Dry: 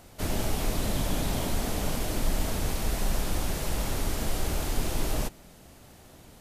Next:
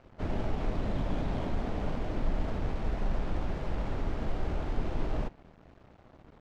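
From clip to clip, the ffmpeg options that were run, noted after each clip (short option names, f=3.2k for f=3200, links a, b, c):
-af "acrusher=bits=7:mix=0:aa=0.000001,equalizer=f=9.9k:w=2.1:g=-8,adynamicsmooth=sensitivity=2:basefreq=1.6k,volume=-2.5dB"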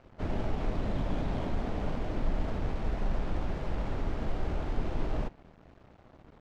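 -af anull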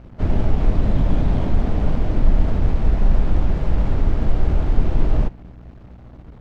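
-af "lowshelf=f=230:g=10,aeval=exprs='val(0)+0.00398*(sin(2*PI*60*n/s)+sin(2*PI*2*60*n/s)/2+sin(2*PI*3*60*n/s)/3+sin(2*PI*4*60*n/s)/4+sin(2*PI*5*60*n/s)/5)':c=same,volume=6dB"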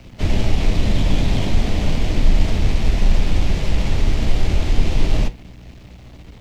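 -filter_complex "[0:a]flanger=delay=9.1:depth=1.7:regen=-73:speed=0.74:shape=triangular,acrossover=split=150|430|1100[a][b][c][d];[d]aexciter=amount=5.4:drive=4.1:freq=2k[e];[a][b][c][e]amix=inputs=4:normalize=0,volume=5dB"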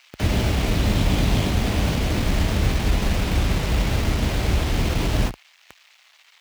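-filter_complex "[0:a]acrossover=split=1100[a][b];[a]acrusher=bits=4:mix=0:aa=0.000001[c];[c][b]amix=inputs=2:normalize=0,highpass=f=40:w=0.5412,highpass=f=40:w=1.3066"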